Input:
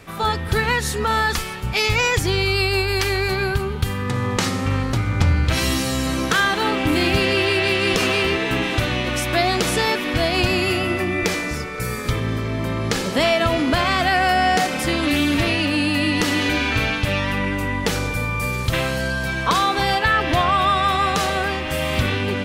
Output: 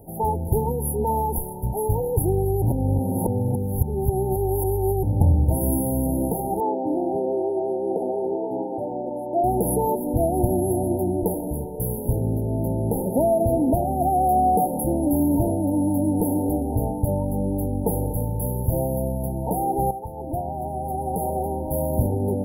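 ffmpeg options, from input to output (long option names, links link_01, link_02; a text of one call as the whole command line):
ffmpeg -i in.wav -filter_complex "[0:a]asettb=1/sr,asplit=3[link_01][link_02][link_03];[link_01]atrim=end=6.604[link_04];[link_02]atrim=start=6.6:end=9.44,asetpts=PTS-STARTPTS,afade=type=in:duration=0.004:curve=qsin,afade=type=out:start_time=2.836:duration=0.004:curve=qsin,highpass=340,lowpass=3100[link_05];[link_03]atrim=start=9.436[link_06];[link_04][link_05]acrossfade=duration=0.004:curve1=hsin:curve2=qsin[link_07];[link_07][link_06]acrossfade=duration=0.004:curve1=qsin:curve2=hsin,asplit=4[link_08][link_09][link_10][link_11];[link_08]atrim=end=2.622[link_12];[link_09]atrim=start=2.618:end=5.032,asetpts=PTS-STARTPTS,areverse[link_13];[link_10]atrim=start=5.028:end=19.91,asetpts=PTS-STARTPTS,afade=type=out:start_time=14.878:duration=0.004:curve=hsin:silence=0.251189[link_14];[link_11]atrim=start=19.91,asetpts=PTS-STARTPTS,afade=type=in:duration=1.86:silence=0.251189[link_15];[link_12][link_13]acrossfade=duration=0.004:curve1=hsin:curve2=hsin[link_16];[link_14][link_15]concat=n=2:v=0:a=1[link_17];[link_16][link_17]acrossfade=duration=0.004:curve1=hsin:curve2=hsin,afftfilt=real='re*(1-between(b*sr/4096,940,10000))':imag='im*(1-between(b*sr/4096,940,10000))':win_size=4096:overlap=0.75,highshelf=frequency=6700:gain=7.5" out.wav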